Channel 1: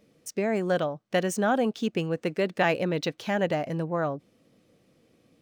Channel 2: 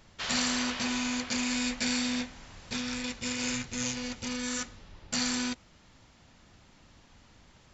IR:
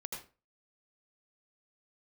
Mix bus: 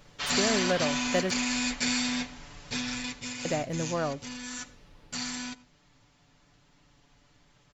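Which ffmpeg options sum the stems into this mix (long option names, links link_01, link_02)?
-filter_complex "[0:a]volume=-3dB,asplit=3[link_01][link_02][link_03];[link_01]atrim=end=1.31,asetpts=PTS-STARTPTS,afade=type=out:start_time=1.306:duration=0.004:curve=hsin[link_04];[link_02]atrim=start=1.31:end=3.45,asetpts=PTS-STARTPTS,volume=0[link_05];[link_03]atrim=start=3.45,asetpts=PTS-STARTPTS,afade=type=in:duration=0.004:curve=hsin[link_06];[link_04][link_05][link_06]concat=n=3:v=0:a=1,asplit=2[link_07][link_08];[link_08]volume=-21.5dB[link_09];[1:a]aecho=1:1:6.9:0.76,volume=-0.5dB,afade=type=out:start_time=2.89:duration=0.45:silence=0.473151,asplit=2[link_10][link_11];[link_11]volume=-17.5dB[link_12];[2:a]atrim=start_sample=2205[link_13];[link_09][link_12]amix=inputs=2:normalize=0[link_14];[link_14][link_13]afir=irnorm=-1:irlink=0[link_15];[link_07][link_10][link_15]amix=inputs=3:normalize=0"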